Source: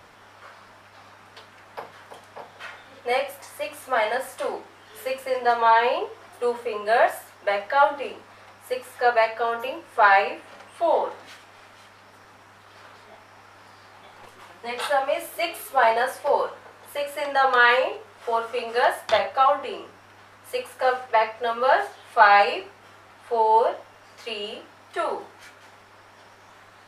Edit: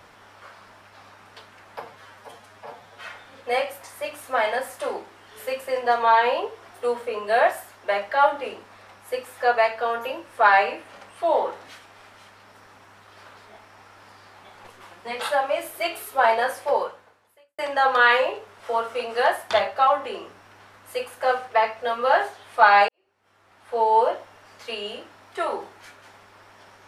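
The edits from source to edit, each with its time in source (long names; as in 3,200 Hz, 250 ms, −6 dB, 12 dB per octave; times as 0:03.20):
0:01.82–0:02.65: time-stretch 1.5×
0:16.29–0:17.17: fade out quadratic
0:22.47–0:23.40: fade in quadratic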